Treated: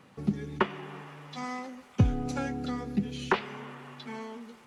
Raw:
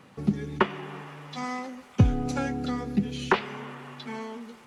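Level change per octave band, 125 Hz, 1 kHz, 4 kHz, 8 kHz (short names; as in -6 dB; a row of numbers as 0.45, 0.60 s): -3.5, -3.5, -3.5, -3.5 dB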